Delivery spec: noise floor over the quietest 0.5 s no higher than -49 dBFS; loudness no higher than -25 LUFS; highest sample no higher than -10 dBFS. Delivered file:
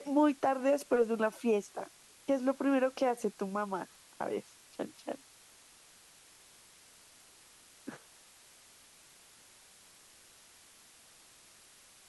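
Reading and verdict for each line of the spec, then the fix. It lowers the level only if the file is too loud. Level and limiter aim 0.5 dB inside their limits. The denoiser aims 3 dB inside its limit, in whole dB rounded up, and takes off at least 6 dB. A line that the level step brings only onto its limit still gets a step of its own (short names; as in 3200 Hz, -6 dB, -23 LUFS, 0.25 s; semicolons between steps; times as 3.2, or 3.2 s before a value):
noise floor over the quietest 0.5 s -60 dBFS: OK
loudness -33.0 LUFS: OK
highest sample -17.0 dBFS: OK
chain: none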